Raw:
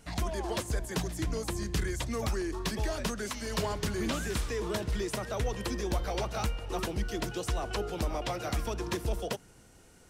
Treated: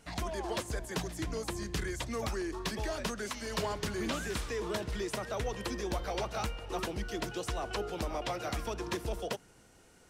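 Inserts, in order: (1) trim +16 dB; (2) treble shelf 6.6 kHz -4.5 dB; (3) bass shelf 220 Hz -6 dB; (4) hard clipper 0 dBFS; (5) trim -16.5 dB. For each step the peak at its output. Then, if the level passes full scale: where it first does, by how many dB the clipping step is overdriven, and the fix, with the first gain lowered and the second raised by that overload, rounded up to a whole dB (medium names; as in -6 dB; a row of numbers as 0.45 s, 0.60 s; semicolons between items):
-4.5 dBFS, -4.5 dBFS, -5.5 dBFS, -5.5 dBFS, -22.0 dBFS; nothing clips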